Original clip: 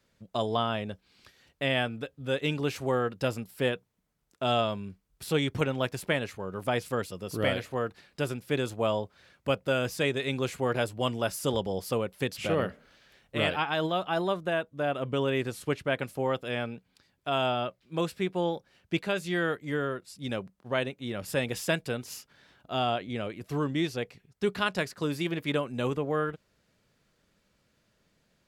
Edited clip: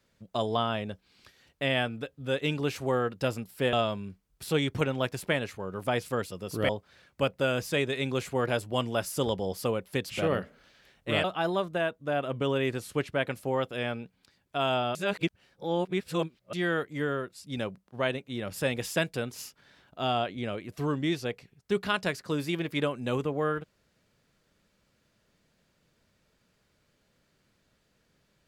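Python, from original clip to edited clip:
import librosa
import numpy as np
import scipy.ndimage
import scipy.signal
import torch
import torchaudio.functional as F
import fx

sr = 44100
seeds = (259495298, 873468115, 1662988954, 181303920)

y = fx.edit(x, sr, fx.cut(start_s=3.73, length_s=0.8),
    fx.cut(start_s=7.49, length_s=1.47),
    fx.cut(start_s=13.51, length_s=0.45),
    fx.reverse_span(start_s=17.67, length_s=1.58), tone=tone)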